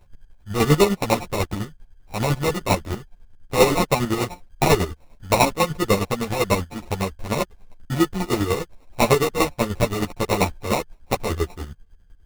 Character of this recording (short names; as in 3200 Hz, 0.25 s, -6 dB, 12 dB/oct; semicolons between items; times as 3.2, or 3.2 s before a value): a buzz of ramps at a fixed pitch in blocks of 8 samples; chopped level 10 Hz, depth 60%, duty 35%; aliases and images of a low sample rate 1600 Hz, jitter 0%; a shimmering, thickened sound